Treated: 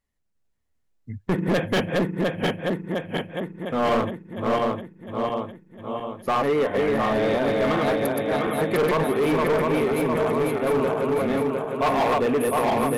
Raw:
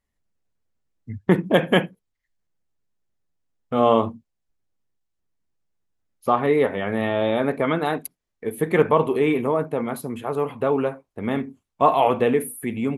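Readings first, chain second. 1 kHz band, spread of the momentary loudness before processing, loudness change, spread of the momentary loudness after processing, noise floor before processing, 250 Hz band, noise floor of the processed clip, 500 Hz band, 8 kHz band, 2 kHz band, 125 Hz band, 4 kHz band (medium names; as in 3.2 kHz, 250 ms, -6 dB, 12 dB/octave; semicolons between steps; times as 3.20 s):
-0.5 dB, 12 LU, -1.5 dB, 9 LU, -80 dBFS, 0.0 dB, -70 dBFS, 0.0 dB, +1.5 dB, +1.0 dB, 0.0 dB, +1.5 dB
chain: backward echo that repeats 353 ms, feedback 75%, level -2 dB; overload inside the chain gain 16 dB; trim -1.5 dB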